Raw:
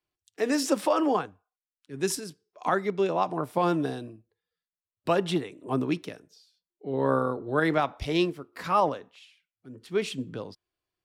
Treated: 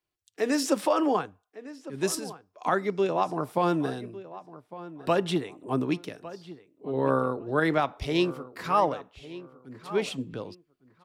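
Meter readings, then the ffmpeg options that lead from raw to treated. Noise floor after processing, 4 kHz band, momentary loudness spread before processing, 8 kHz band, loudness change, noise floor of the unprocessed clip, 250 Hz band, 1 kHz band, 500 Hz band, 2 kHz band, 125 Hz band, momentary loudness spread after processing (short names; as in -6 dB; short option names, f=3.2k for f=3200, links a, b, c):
-76 dBFS, 0.0 dB, 15 LU, 0.0 dB, 0.0 dB, under -85 dBFS, 0.0 dB, 0.0 dB, 0.0 dB, 0.0 dB, 0.0 dB, 18 LU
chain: -filter_complex "[0:a]asplit=2[a][b];[b]adelay=1155,lowpass=f=2.4k:p=1,volume=-16dB,asplit=2[c][d];[d]adelay=1155,lowpass=f=2.4k:p=1,volume=0.25[e];[a][c][e]amix=inputs=3:normalize=0"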